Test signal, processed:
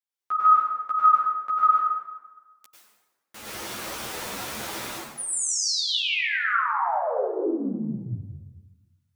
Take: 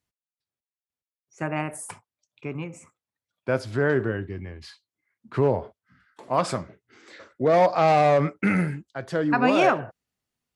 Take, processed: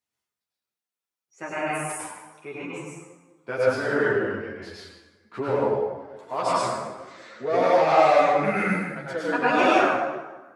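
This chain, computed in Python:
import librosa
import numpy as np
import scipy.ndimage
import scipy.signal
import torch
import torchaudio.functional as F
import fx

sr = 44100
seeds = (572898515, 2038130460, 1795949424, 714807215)

p1 = fx.highpass(x, sr, hz=400.0, slope=6)
p2 = fx.rider(p1, sr, range_db=3, speed_s=2.0)
p3 = p1 + (p2 * librosa.db_to_amplitude(-1.0))
p4 = fx.rev_plate(p3, sr, seeds[0], rt60_s=1.3, hf_ratio=0.65, predelay_ms=85, drr_db=-7.0)
p5 = fx.ensemble(p4, sr)
y = p5 * librosa.db_to_amplitude(-7.0)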